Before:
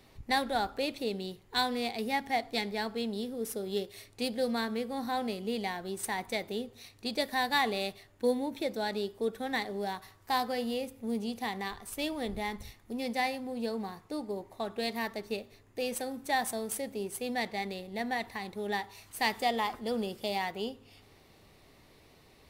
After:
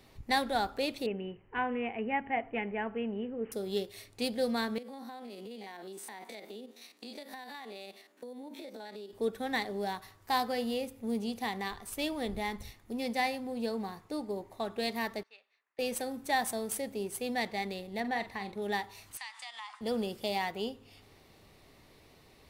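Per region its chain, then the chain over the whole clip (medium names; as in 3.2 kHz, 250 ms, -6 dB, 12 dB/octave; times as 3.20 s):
1.06–3.52 s: Chebyshev low-pass 3 kHz, order 8 + band-stop 730 Hz, Q 21
4.78–9.13 s: spectrogram pixelated in time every 50 ms + steep high-pass 210 Hz + compression 12:1, threshold -41 dBFS
15.23–15.79 s: ladder band-pass 1.9 kHz, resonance 20% + tape noise reduction on one side only decoder only
18.00–18.62 s: treble shelf 5.5 kHz -9 dB + doubling 45 ms -11 dB
19.17–19.81 s: elliptic band-pass 1–9 kHz + compression 4:1, threshold -41 dBFS
whole clip: none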